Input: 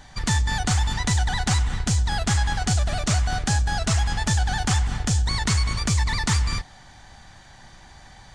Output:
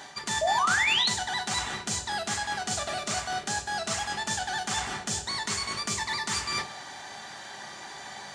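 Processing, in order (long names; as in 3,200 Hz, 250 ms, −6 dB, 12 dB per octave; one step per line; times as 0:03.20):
high-pass filter 310 Hz 12 dB per octave
reversed playback
downward compressor 6 to 1, threshold −37 dBFS, peak gain reduction 15.5 dB
reversed playback
sound drawn into the spectrogram rise, 0:00.41–0:01.09, 600–4,500 Hz −33 dBFS
convolution reverb RT60 0.45 s, pre-delay 3 ms, DRR 5 dB
level +7 dB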